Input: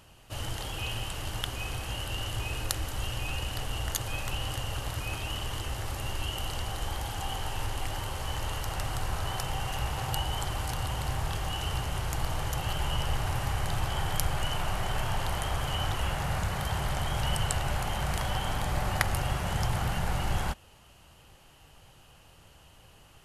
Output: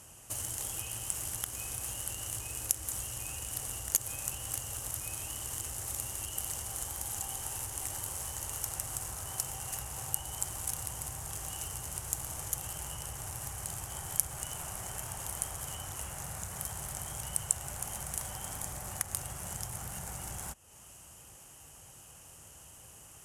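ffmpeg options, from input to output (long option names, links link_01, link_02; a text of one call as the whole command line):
ffmpeg -i in.wav -af "highpass=52,acompressor=threshold=-44dB:ratio=3,aexciter=amount=16:drive=6.1:freq=6300,adynamicsmooth=sensitivity=6.5:basefreq=5300,volume=-1dB" out.wav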